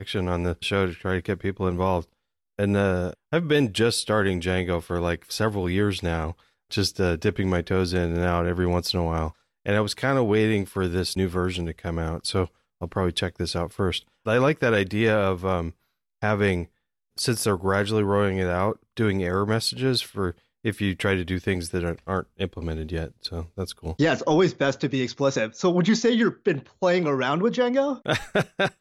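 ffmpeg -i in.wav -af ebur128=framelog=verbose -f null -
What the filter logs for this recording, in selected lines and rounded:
Integrated loudness:
  I:         -24.8 LUFS
  Threshold: -34.9 LUFS
Loudness range:
  LRA:         4.1 LU
  Threshold: -45.0 LUFS
  LRA low:   -27.1 LUFS
  LRA high:  -23.1 LUFS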